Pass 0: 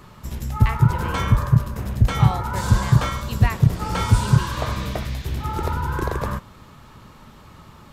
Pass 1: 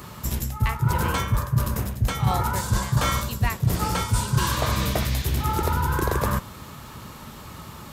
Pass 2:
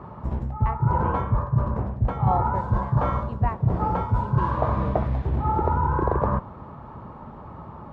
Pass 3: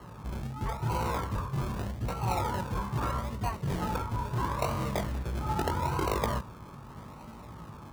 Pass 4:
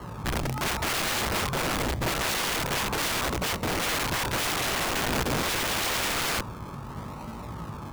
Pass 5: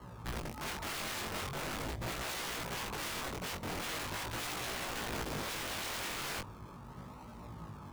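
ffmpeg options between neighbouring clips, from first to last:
-af "highpass=44,highshelf=f=6.8k:g=12,areverse,acompressor=threshold=-24dB:ratio=6,areverse,volume=5dB"
-af "lowpass=f=880:t=q:w=1.7"
-filter_complex "[0:a]flanger=delay=17:depth=5.1:speed=0.94,acrossover=split=180|770[a][b][c];[a]asoftclip=type=tanh:threshold=-29dB[d];[b]acrusher=samples=36:mix=1:aa=0.000001:lfo=1:lforange=21.6:lforate=0.79[e];[d][e][c]amix=inputs=3:normalize=0,volume=-2dB"
-af "aeval=exprs='(mod(35.5*val(0)+1,2)-1)/35.5':c=same,volume=8dB"
-af "flanger=delay=16:depth=6.8:speed=0.42,volume=-8.5dB"

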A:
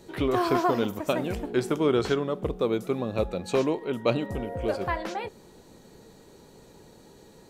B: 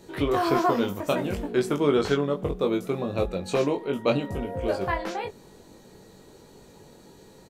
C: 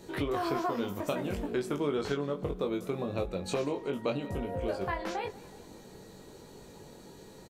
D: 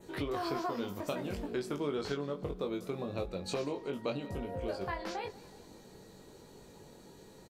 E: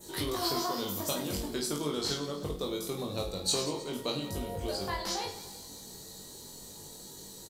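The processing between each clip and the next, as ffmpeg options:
-filter_complex "[0:a]asplit=2[a][b];[b]adelay=21,volume=-4dB[c];[a][c]amix=inputs=2:normalize=0"
-af "acompressor=threshold=-32dB:ratio=2.5,aecho=1:1:186|372|558|744:0.1|0.055|0.0303|0.0166"
-af "adynamicequalizer=threshold=0.001:dfrequency=4700:dqfactor=2.6:tfrequency=4700:tqfactor=2.6:attack=5:release=100:ratio=0.375:range=3:mode=boostabove:tftype=bell,volume=-4dB"
-af "aexciter=amount=2.1:drive=9.8:freq=3.5k,aecho=1:1:20|52|103.2|185.1|316.2:0.631|0.398|0.251|0.158|0.1"

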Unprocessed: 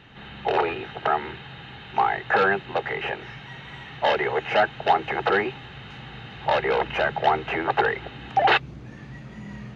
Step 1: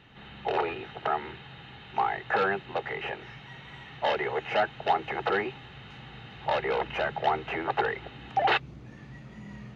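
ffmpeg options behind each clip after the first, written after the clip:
-af "bandreject=f=1.6k:w=24,volume=-5.5dB"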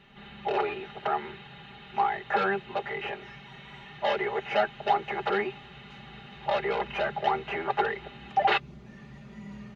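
-af "aecho=1:1:5:0.81,volume=-2.5dB"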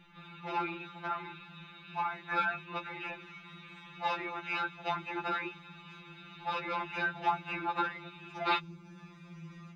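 -af "afftfilt=real='re*2.83*eq(mod(b,8),0)':imag='im*2.83*eq(mod(b,8),0)':win_size=2048:overlap=0.75"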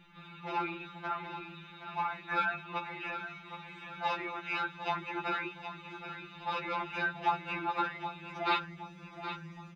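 -af "aecho=1:1:770|1540|2310|3080:0.299|0.125|0.0527|0.0221"

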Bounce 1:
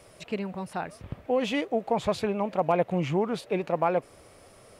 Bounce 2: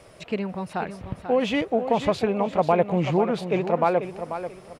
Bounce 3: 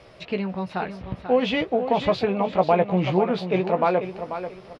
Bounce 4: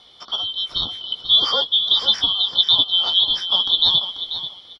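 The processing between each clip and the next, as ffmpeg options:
-filter_complex "[0:a]highshelf=f=7.1k:g=-8.5,asplit=2[a][b];[b]aecho=0:1:489|978|1467:0.316|0.0917|0.0266[c];[a][c]amix=inputs=2:normalize=0,volume=4dB"
-filter_complex "[0:a]highshelf=f=6.1k:t=q:w=1.5:g=-11.5,asplit=2[a][b];[b]adelay=16,volume=-8dB[c];[a][c]amix=inputs=2:normalize=0"
-af "afftfilt=real='real(if(lt(b,272),68*(eq(floor(b/68),0)*1+eq(floor(b/68),1)*3+eq(floor(b/68),2)*0+eq(floor(b/68),3)*2)+mod(b,68),b),0)':imag='imag(if(lt(b,272),68*(eq(floor(b/68),0)*1+eq(floor(b/68),1)*3+eq(floor(b/68),2)*0+eq(floor(b/68),3)*2)+mod(b,68),b),0)':win_size=2048:overlap=0.75,dynaudnorm=f=230:g=5:m=5dB"

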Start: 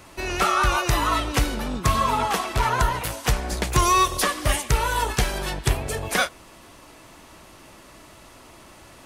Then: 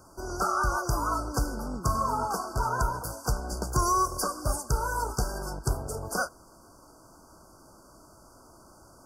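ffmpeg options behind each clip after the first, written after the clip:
-af "afftfilt=real='re*(1-between(b*sr/4096,1600,4500))':imag='im*(1-between(b*sr/4096,1600,4500))':win_size=4096:overlap=0.75,volume=-6dB"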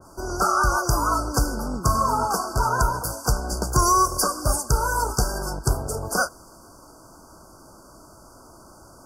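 -af "adynamicequalizer=threshold=0.0126:dfrequency=1800:dqfactor=0.7:tfrequency=1800:tqfactor=0.7:attack=5:release=100:ratio=0.375:range=1.5:mode=boostabove:tftype=highshelf,volume=6dB"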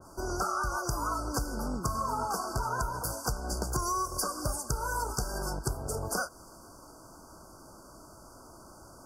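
-af "acompressor=threshold=-25dB:ratio=6,volume=-3.5dB"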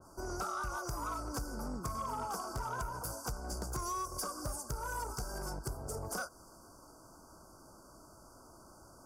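-af "asoftclip=type=tanh:threshold=-24dB,volume=-5.5dB"

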